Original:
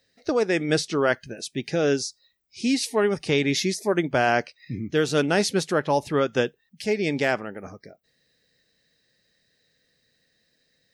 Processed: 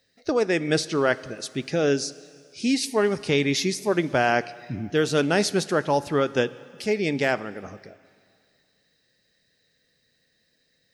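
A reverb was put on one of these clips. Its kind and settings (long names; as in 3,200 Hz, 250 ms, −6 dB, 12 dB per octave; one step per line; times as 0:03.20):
dense smooth reverb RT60 2.2 s, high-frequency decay 1×, DRR 17 dB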